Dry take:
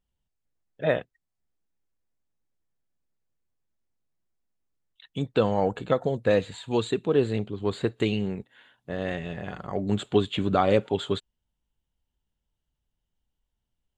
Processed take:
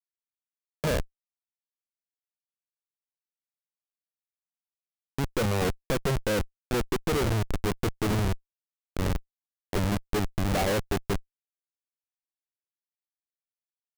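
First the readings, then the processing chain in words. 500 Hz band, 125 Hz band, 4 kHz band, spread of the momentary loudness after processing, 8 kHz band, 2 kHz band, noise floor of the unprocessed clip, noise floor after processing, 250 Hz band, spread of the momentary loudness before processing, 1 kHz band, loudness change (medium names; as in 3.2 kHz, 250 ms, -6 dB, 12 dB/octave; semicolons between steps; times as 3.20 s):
-5.5 dB, +2.0 dB, -0.5 dB, 8 LU, +10.5 dB, +1.0 dB, -82 dBFS, under -85 dBFS, -3.0 dB, 10 LU, -2.5 dB, -2.5 dB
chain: Savitzky-Golay filter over 65 samples; on a send: feedback delay 940 ms, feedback 58%, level -16 dB; on the sum: vibrato 2.1 Hz 40 cents; Schmitt trigger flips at -27 dBFS; trim +6.5 dB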